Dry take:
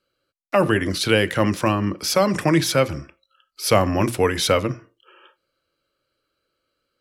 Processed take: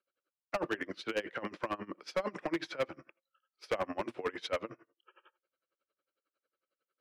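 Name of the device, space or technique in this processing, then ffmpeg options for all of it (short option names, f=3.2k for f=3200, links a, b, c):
helicopter radio: -af "highpass=350,lowpass=2.6k,aeval=exprs='val(0)*pow(10,-24*(0.5-0.5*cos(2*PI*11*n/s))/20)':c=same,asoftclip=type=hard:threshold=-20dB,volume=-6.5dB"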